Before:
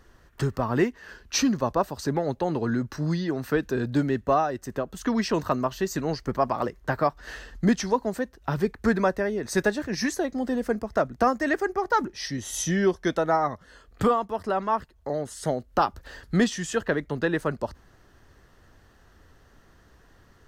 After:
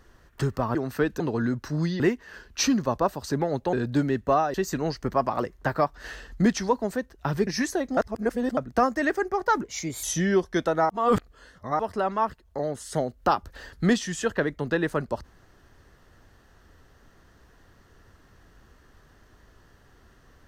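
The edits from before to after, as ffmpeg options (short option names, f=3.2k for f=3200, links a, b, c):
-filter_complex "[0:a]asplit=13[a][b][c][d][e][f][g][h][i][j][k][l][m];[a]atrim=end=0.752[n];[b]atrim=start=3.278:end=3.732[o];[c]atrim=start=2.478:end=3.282[p];[d]atrim=start=0.748:end=2.482[q];[e]atrim=start=3.728:end=4.542[r];[f]atrim=start=5.768:end=8.702[s];[g]atrim=start=9.908:end=10.412[t];[h]atrim=start=10.408:end=11.012,asetpts=PTS-STARTPTS,areverse[u];[i]atrim=start=11.008:end=12.084[v];[j]atrim=start=12.08:end=12.54,asetpts=PTS-STARTPTS,asetrate=51597,aresample=44100,atrim=end_sample=17338,asetpts=PTS-STARTPTS[w];[k]atrim=start=12.536:end=13.402[x];[l]atrim=start=13.398:end=14.302,asetpts=PTS-STARTPTS,areverse[y];[m]atrim=start=14.298[z];[n][o]acrossfade=d=0.004:c1=hsin:c2=hsin[aa];[aa][p]acrossfade=d=0.004:c1=hsin:c2=hsin[ab];[ab][q]acrossfade=d=0.004:c1=hsin:c2=hsin[ac];[ac][r]acrossfade=d=0.004:c1=hsin:c2=hsin[ad];[ad][s]acrossfade=d=0.004:c1=hsin:c2=hsin[ae];[ae][t]acrossfade=d=0.004:c1=hsin:c2=hsin[af];[af][u]acrossfade=d=0.004:c1=hsin:c2=hsin[ag];[ag][v]acrossfade=d=0.004:c1=hsin:c2=hsin[ah];[ah][w]acrossfade=d=0.004:c1=hsin:c2=hsin[ai];[ai][x]acrossfade=d=0.004:c1=hsin:c2=hsin[aj];[aj][y]acrossfade=d=0.004:c1=hsin:c2=hsin[ak];[ak][z]acrossfade=d=0.004:c1=hsin:c2=hsin"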